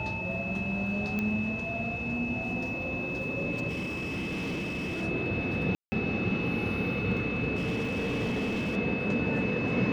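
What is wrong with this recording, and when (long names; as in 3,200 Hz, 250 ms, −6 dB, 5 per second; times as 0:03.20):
whistle 2,600 Hz −34 dBFS
0:01.19: click −19 dBFS
0:03.68–0:05.03: clipping −30 dBFS
0:05.75–0:05.92: drop-out 170 ms
0:07.55–0:08.77: clipping −27 dBFS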